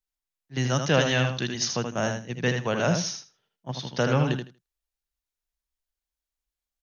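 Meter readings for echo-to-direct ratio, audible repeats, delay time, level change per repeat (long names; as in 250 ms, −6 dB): −6.0 dB, 2, 79 ms, −15.5 dB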